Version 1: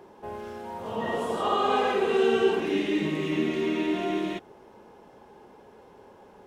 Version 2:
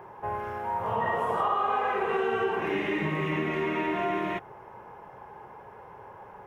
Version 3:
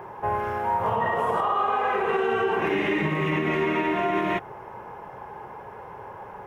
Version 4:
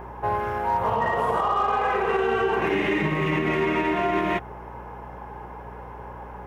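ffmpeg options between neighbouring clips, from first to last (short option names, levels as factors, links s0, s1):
-af "equalizer=f=125:t=o:w=1:g=9,equalizer=f=250:t=o:w=1:g=-10,equalizer=f=1000:t=o:w=1:g=8,equalizer=f=2000:t=o:w=1:g=6,equalizer=f=4000:t=o:w=1:g=-11,equalizer=f=8000:t=o:w=1:g=-9,acompressor=threshold=0.0501:ratio=6,volume=1.26"
-af "alimiter=limit=0.0794:level=0:latency=1:release=85,volume=2.11"
-af "aeval=exprs='0.168*(cos(1*acos(clip(val(0)/0.168,-1,1)))-cos(1*PI/2))+0.00266*(cos(7*acos(clip(val(0)/0.168,-1,1)))-cos(7*PI/2))':c=same,aeval=exprs='val(0)+0.00708*(sin(2*PI*60*n/s)+sin(2*PI*2*60*n/s)/2+sin(2*PI*3*60*n/s)/3+sin(2*PI*4*60*n/s)/4+sin(2*PI*5*60*n/s)/5)':c=same,volume=1.12"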